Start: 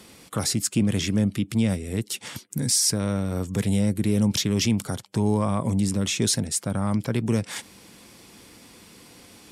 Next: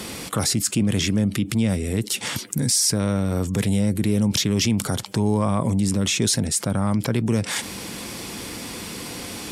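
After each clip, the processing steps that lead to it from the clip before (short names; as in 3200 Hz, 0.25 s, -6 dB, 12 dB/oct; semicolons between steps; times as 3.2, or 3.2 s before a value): fast leveller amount 50%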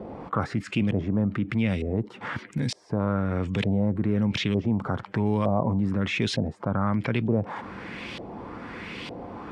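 LFO low-pass saw up 1.1 Hz 600–3300 Hz; gain -4 dB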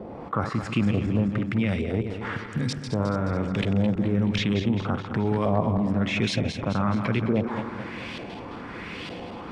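regenerating reverse delay 0.107 s, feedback 71%, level -8 dB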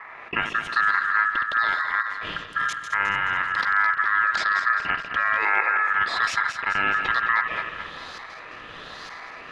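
ring modulator 1500 Hz; dynamic EQ 1800 Hz, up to +5 dB, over -37 dBFS, Q 0.75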